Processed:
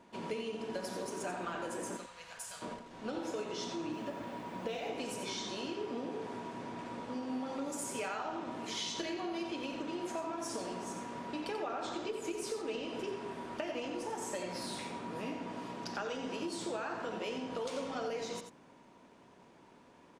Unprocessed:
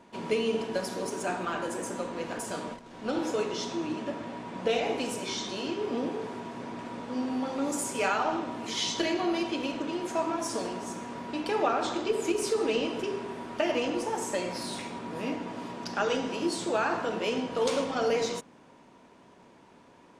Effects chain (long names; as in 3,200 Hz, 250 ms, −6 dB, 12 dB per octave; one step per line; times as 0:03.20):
0:01.97–0:02.62: guitar amp tone stack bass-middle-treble 10-0-10
downward compressor, threshold −31 dBFS, peak gain reduction 9.5 dB
0:03.92–0:04.88: background noise white −70 dBFS
single-tap delay 89 ms −8.5 dB
level −4.5 dB